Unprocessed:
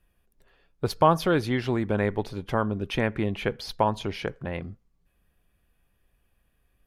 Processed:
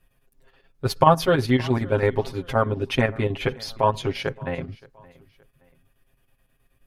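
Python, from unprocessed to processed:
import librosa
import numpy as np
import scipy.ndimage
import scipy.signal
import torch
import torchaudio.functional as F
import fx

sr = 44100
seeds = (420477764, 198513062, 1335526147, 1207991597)

p1 = fx.chopper(x, sr, hz=9.4, depth_pct=60, duty_pct=70)
p2 = p1 + 0.93 * np.pad(p1, (int(7.5 * sr / 1000.0), 0))[:len(p1)]
p3 = p2 + fx.echo_feedback(p2, sr, ms=571, feedback_pct=37, wet_db=-23.0, dry=0)
y = p3 * librosa.db_to_amplitude(2.5)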